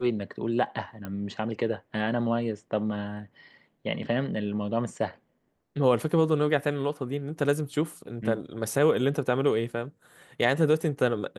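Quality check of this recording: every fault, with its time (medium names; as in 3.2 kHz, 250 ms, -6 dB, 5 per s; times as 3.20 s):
1.05 s: pop -22 dBFS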